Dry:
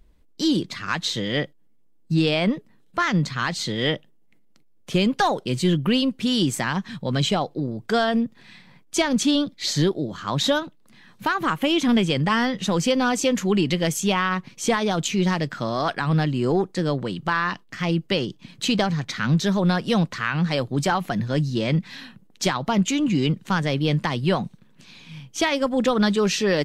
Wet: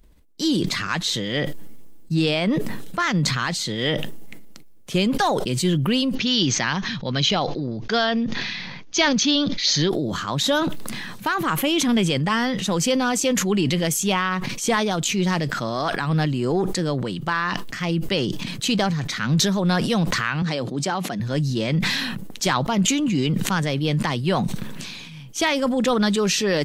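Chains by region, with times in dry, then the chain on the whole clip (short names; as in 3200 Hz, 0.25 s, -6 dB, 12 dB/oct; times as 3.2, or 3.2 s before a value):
6.15–9.9 Chebyshev low-pass 6500 Hz, order 6 + bell 3400 Hz +5.5 dB 2 oct
20.42–21.2 BPF 180–6600 Hz + bell 1600 Hz -4.5 dB 2.9 oct
whole clip: high shelf 7100 Hz +7.5 dB; sustainer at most 27 dB/s; gain -1 dB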